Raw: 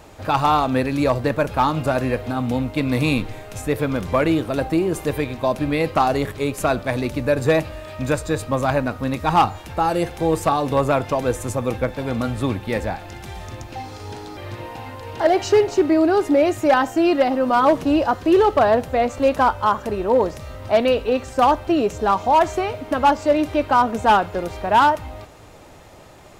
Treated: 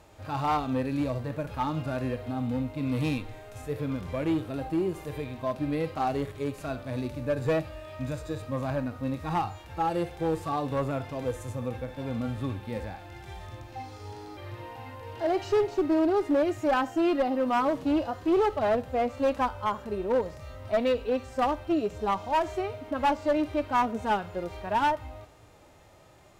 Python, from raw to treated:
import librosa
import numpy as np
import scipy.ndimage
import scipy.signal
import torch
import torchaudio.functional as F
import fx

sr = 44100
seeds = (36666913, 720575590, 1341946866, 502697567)

y = fx.hpss(x, sr, part='percussive', gain_db=-16)
y = fx.clip_asym(y, sr, top_db=-15.5, bottom_db=-10.5)
y = F.gain(torch.from_numpy(y), -6.5).numpy()